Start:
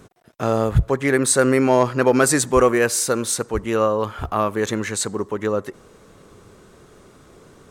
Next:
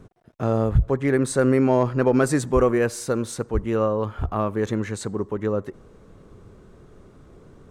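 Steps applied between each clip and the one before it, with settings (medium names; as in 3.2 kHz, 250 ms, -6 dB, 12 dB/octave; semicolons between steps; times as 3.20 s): tilt EQ -2.5 dB/octave; loudness maximiser +2 dB; trim -7.5 dB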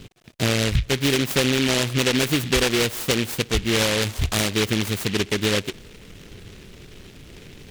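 compression 6:1, threshold -22 dBFS, peak gain reduction 10 dB; delay time shaken by noise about 2.6 kHz, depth 0.28 ms; trim +5 dB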